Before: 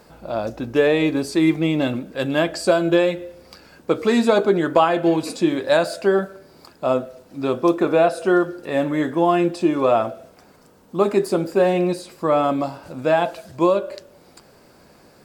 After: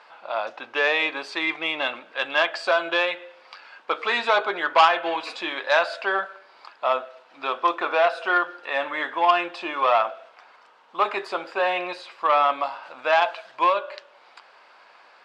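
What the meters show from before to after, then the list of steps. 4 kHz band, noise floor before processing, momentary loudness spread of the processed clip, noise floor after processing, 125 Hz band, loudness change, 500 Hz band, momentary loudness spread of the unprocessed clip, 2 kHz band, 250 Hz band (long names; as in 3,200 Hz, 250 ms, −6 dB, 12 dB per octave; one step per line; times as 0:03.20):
+3.0 dB, −52 dBFS, 10 LU, −54 dBFS, below −30 dB, −3.5 dB, −7.5 dB, 10 LU, +4.5 dB, −18.5 dB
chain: Chebyshev band-pass filter 940–3,200 Hz, order 2
saturating transformer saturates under 1,700 Hz
level +6 dB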